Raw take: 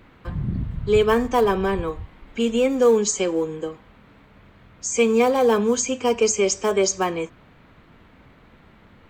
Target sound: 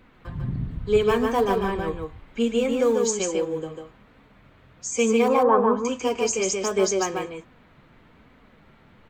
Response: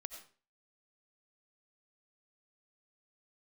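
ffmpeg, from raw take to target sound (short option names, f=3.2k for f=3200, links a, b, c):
-filter_complex "[0:a]flanger=delay=3.9:depth=4.1:regen=55:speed=1.2:shape=sinusoidal,asettb=1/sr,asplit=3[a][b][c];[a]atrim=end=5.284[d];[b]atrim=start=5.28:end=5.85,asetpts=PTS-STARTPTS,afade=t=in:d=0.004:c=qsin,afade=t=out:st=0.566:d=0.004:c=qsin,lowpass=f=1.1k:t=q:w=3.6[e];[c]atrim=start=5.846[f];[d][e]acrossfade=d=0.004:c1=hsin:c2=qsin[g];[g][f]acrossfade=d=0.004:c1=qsin:c2=hsin,aecho=1:1:147:0.631"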